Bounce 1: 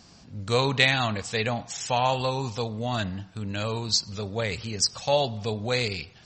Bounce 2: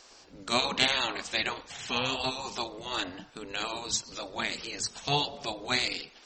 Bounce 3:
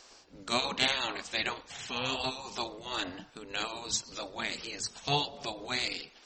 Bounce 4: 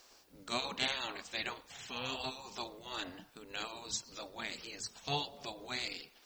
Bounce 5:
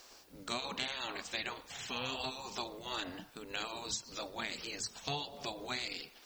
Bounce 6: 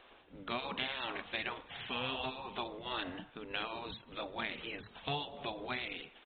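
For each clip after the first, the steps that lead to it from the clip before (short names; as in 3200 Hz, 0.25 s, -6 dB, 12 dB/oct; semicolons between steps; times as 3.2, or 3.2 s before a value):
spectral gate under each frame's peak -10 dB weak; gain +2 dB
noise-modulated level, depth 55%
added noise blue -66 dBFS; gain -6.5 dB
compressor 6:1, threshold -39 dBFS, peak gain reduction 10.5 dB; gain +4.5 dB
downsampling 8000 Hz; gain +1.5 dB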